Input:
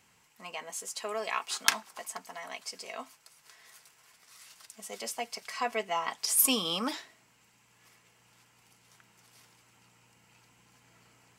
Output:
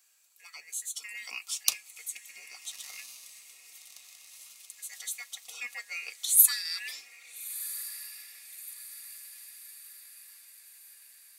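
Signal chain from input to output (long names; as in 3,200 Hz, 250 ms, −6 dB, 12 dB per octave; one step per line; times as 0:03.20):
band-splitting scrambler in four parts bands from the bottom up 2143
first difference
feedback delay with all-pass diffusion 1,313 ms, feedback 53%, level −13.5 dB
level +2.5 dB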